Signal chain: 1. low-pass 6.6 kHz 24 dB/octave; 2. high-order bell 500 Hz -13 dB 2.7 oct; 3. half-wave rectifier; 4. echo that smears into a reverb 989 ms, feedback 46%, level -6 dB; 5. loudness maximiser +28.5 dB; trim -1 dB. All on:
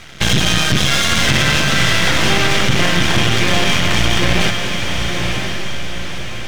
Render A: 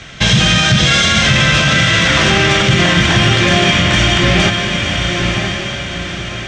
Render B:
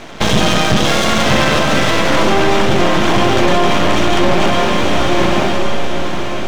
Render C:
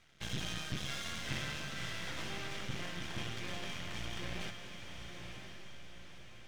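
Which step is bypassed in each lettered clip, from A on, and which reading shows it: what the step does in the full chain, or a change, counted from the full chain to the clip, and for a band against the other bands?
3, distortion 0 dB; 2, 500 Hz band +9.5 dB; 5, crest factor change +7.0 dB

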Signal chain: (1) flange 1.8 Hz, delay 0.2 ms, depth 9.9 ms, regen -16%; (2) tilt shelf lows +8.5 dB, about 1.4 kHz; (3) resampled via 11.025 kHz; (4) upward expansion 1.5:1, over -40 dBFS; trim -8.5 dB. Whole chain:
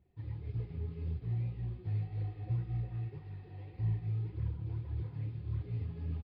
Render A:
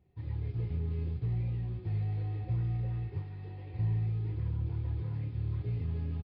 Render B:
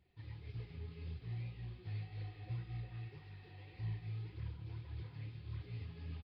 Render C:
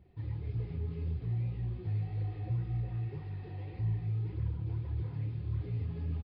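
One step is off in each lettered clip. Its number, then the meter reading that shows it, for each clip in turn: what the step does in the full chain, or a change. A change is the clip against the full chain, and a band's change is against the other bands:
1, loudness change +3.5 LU; 2, 1 kHz band +4.5 dB; 4, momentary loudness spread change -2 LU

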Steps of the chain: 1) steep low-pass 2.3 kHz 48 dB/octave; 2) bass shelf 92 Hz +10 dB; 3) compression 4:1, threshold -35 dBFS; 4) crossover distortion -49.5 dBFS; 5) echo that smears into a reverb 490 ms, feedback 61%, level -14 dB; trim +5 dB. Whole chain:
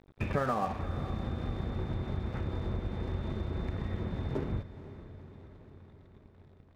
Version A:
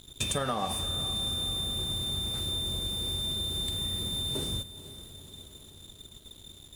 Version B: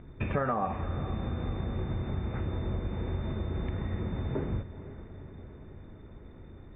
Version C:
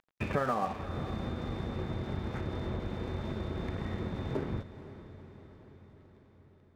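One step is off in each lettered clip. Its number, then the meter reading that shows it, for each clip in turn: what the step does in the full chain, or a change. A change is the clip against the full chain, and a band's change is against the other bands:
1, 4 kHz band +27.5 dB; 4, distortion -15 dB; 2, 125 Hz band -3.0 dB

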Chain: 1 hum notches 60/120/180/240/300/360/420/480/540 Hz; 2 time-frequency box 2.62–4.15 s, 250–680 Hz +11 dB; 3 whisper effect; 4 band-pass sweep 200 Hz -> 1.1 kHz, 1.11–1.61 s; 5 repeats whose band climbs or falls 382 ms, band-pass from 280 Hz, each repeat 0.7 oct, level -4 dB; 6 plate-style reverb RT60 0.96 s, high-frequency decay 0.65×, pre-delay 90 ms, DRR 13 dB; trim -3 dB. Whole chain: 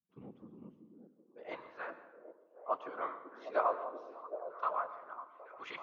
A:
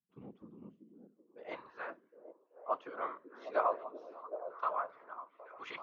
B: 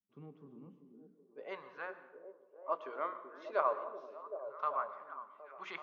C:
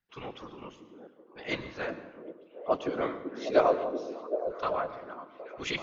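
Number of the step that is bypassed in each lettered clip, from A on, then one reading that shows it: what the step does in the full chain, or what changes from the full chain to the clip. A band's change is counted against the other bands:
6, echo-to-direct -8.5 dB to -10.5 dB; 3, 250 Hz band -1.5 dB; 4, 1 kHz band -7.5 dB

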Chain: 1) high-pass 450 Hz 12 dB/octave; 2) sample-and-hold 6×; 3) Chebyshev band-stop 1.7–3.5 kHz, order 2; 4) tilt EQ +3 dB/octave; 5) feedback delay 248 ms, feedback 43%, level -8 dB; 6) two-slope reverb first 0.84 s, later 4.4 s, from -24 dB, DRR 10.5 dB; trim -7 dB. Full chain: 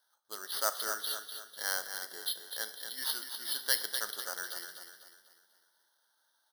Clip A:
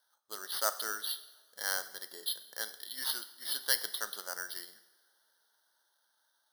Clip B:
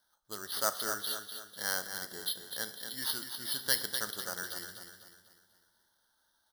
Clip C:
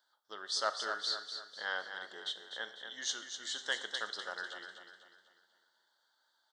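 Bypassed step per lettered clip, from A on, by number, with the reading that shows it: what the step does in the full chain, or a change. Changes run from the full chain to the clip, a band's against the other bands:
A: 5, echo-to-direct -5.0 dB to -10.5 dB; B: 1, 250 Hz band +8.5 dB; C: 2, crest factor change -7.0 dB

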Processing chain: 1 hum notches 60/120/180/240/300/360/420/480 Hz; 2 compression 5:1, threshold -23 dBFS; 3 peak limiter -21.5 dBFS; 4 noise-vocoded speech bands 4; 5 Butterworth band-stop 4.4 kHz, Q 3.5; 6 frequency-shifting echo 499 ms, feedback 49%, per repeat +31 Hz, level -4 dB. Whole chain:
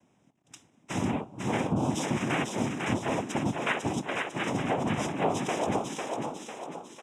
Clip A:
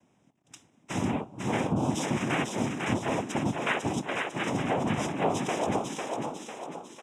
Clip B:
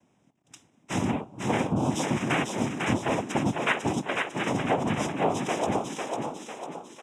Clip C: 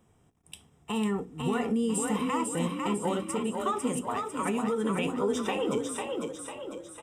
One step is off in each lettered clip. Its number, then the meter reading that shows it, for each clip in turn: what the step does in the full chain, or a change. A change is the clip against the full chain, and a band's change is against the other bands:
2, mean gain reduction 1.5 dB; 3, crest factor change +2.0 dB; 4, 2 kHz band -5.5 dB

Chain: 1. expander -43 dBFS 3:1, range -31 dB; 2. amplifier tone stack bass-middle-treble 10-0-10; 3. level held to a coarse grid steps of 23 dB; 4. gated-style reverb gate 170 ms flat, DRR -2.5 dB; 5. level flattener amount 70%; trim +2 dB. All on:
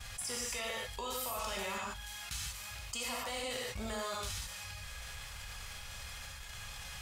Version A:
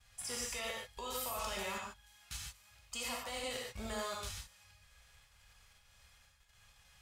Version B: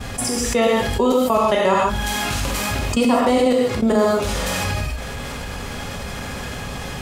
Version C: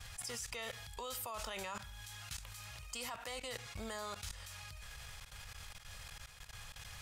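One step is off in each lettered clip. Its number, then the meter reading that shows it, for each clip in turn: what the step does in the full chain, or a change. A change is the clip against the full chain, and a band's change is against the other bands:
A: 5, momentary loudness spread change +2 LU; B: 2, 250 Hz band +11.0 dB; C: 4, loudness change -5.5 LU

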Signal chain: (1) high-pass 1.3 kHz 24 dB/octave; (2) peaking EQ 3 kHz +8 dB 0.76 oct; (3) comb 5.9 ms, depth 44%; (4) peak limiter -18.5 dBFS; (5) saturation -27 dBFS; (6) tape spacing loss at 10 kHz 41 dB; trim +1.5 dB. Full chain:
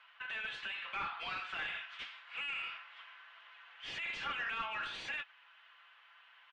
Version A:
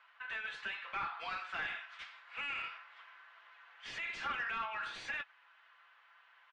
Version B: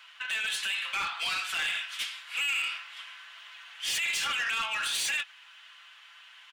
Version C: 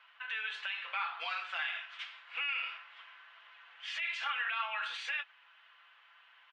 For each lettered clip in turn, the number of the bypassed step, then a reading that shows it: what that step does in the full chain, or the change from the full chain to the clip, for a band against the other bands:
2, 4 kHz band -4.5 dB; 6, 8 kHz band +21.0 dB; 5, distortion -12 dB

